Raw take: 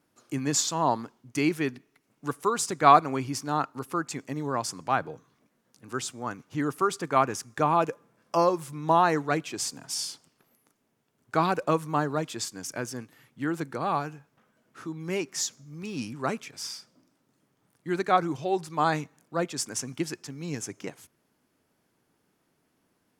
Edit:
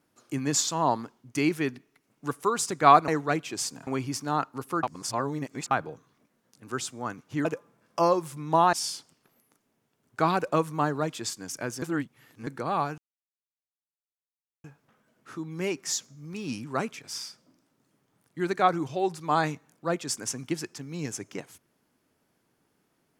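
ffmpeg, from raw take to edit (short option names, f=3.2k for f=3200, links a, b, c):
-filter_complex "[0:a]asplit=10[a][b][c][d][e][f][g][h][i][j];[a]atrim=end=3.082[k];[b]atrim=start=9.088:end=9.882[l];[c]atrim=start=3.078:end=4.042[m];[d]atrim=start=4.038:end=4.922,asetpts=PTS-STARTPTS,areverse[n];[e]atrim=start=4.918:end=6.662[o];[f]atrim=start=7.808:end=9.092[p];[g]atrim=start=9.878:end=12.972[q];[h]atrim=start=12.968:end=13.622,asetpts=PTS-STARTPTS,areverse[r];[i]atrim=start=13.618:end=14.13,asetpts=PTS-STARTPTS,afade=t=out:st=0.508:d=0.004:c=hsin,apad=pad_dur=1.66[s];[j]atrim=start=14.13,asetpts=PTS-STARTPTS,afade=t=in:d=0.004:c=hsin[t];[k][l]acrossfade=d=0.004:c1=hsin:c2=hsin[u];[u][m]acrossfade=d=0.004:c1=hsin:c2=hsin[v];[v][n]acrossfade=d=0.004:c1=hsin:c2=hsin[w];[w][o]acrossfade=d=0.004:c1=hsin:c2=hsin[x];[x][p]acrossfade=d=0.004:c1=hsin:c2=hsin[y];[y][q]acrossfade=d=0.004:c1=hsin:c2=hsin[z];[z][r]acrossfade=d=0.004:c1=hsin:c2=hsin[aa];[s][t]concat=n=2:v=0:a=1[ab];[aa][ab]acrossfade=d=0.004:c1=hsin:c2=hsin"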